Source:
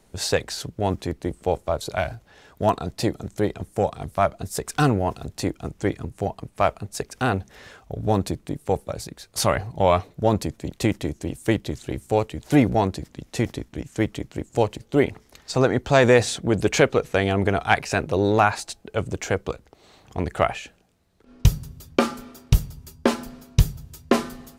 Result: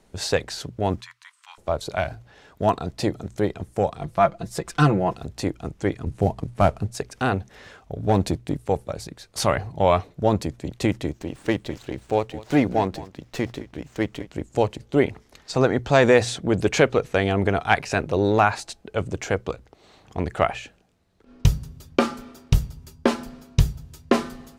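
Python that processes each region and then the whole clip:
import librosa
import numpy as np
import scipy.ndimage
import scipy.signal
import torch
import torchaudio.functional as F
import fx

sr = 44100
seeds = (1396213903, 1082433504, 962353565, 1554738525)

y = fx.chain(x, sr, fx.cheby1_highpass(hz=1000.0, order=6),
    fx.high_shelf(hz=11000.0, db=-8.5), at=(1.01, 1.58))
y = fx.chain(y, sr, fx.high_shelf(hz=6800.0, db=-6.5),
    fx.comb(ms=5.9, depth=0.68), at=(4.01, 5.17))
y = fx.chain(y, sr, fx.cvsd(bps=64000),
    fx.low_shelf(hz=430.0, db=8.5), at=(6.06, 6.91))
y = fx.chain(y, sr, fx.peak_eq(hz=1200.0, db=-8.0, octaves=0.36),
    fx.leveller(passes=1), at=(8.09, 8.59))
y = fx.chain(y, sr, fx.low_shelf(hz=190.0, db=-6.5),
    fx.echo_single(ms=207, db=-18.0),
    fx.running_max(window=3), at=(11.11, 14.27))
y = fx.high_shelf(y, sr, hz=9700.0, db=-9.5)
y = fx.hum_notches(y, sr, base_hz=60, count=2)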